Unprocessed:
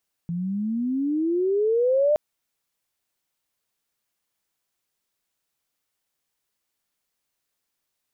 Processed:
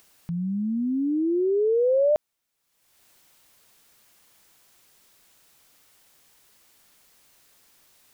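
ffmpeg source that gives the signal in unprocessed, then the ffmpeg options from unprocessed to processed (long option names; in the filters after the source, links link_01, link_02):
-f lavfi -i "aevalsrc='pow(10,(-16+9*(t/1.87-1))/20)*sin(2*PI*167*1.87/(22.5*log(2)/12)*(exp(22.5*log(2)/12*t/1.87)-1))':duration=1.87:sample_rate=44100"
-af "acompressor=mode=upward:threshold=-42dB:ratio=2.5"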